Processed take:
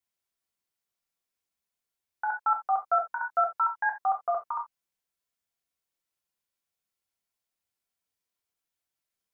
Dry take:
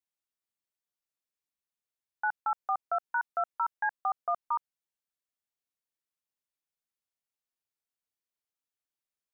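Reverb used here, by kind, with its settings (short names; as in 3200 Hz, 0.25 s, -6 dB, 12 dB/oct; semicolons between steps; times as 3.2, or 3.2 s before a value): non-linear reverb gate 0.1 s falling, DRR 0.5 dB; gain +2 dB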